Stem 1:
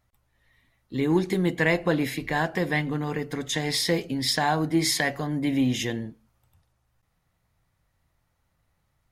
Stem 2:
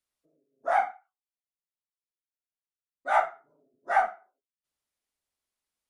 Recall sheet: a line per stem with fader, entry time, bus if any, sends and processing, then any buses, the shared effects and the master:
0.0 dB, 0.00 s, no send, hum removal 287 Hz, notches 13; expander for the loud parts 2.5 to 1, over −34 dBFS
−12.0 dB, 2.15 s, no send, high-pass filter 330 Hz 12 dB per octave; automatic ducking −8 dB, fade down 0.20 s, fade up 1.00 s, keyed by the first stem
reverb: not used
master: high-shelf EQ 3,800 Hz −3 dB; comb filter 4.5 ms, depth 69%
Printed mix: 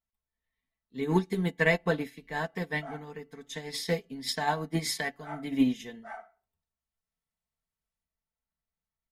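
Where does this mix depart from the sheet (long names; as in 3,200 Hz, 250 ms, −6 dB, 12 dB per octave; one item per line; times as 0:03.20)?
stem 2: missing high-pass filter 330 Hz 12 dB per octave
master: missing high-shelf EQ 3,800 Hz −3 dB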